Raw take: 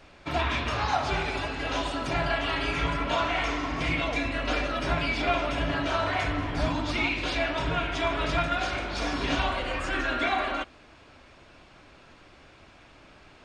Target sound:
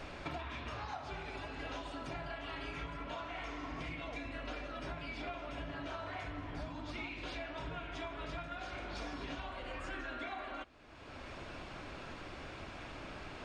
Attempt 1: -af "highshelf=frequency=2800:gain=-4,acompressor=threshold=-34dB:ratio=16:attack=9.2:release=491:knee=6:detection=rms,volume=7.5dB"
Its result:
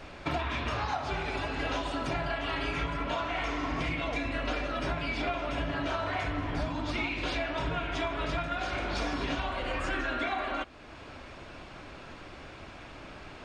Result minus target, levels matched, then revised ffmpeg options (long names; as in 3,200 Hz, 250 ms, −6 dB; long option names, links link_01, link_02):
downward compressor: peak gain reduction −11 dB
-af "highshelf=frequency=2800:gain=-4,acompressor=threshold=-45.5dB:ratio=16:attack=9.2:release=491:knee=6:detection=rms,volume=7.5dB"